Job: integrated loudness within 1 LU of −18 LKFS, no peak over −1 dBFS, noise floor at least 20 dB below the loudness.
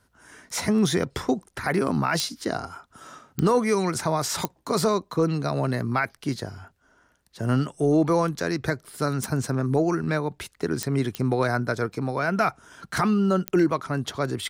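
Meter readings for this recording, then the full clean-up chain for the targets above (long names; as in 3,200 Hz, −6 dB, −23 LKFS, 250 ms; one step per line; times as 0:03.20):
number of clicks 7; integrated loudness −25.0 LKFS; sample peak −9.0 dBFS; target loudness −18.0 LKFS
→ click removal
level +7 dB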